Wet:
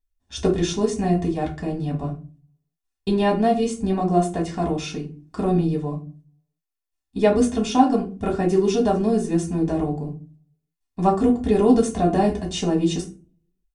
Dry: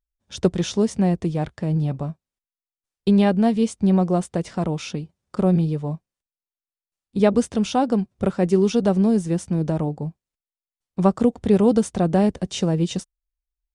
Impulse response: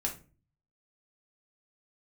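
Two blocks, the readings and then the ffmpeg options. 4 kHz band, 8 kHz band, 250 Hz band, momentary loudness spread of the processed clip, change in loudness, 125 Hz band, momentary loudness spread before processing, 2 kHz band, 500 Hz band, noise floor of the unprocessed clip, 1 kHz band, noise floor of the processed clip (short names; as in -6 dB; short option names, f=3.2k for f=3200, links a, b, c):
+1.0 dB, +1.0 dB, -1.0 dB, 13 LU, -0.5 dB, -3.0 dB, 13 LU, +1.0 dB, +0.5 dB, under -85 dBFS, +4.0 dB, -82 dBFS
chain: -filter_complex "[0:a]aecho=1:1:2.8:0.57[a];[1:a]atrim=start_sample=2205[b];[a][b]afir=irnorm=-1:irlink=0,volume=-3dB"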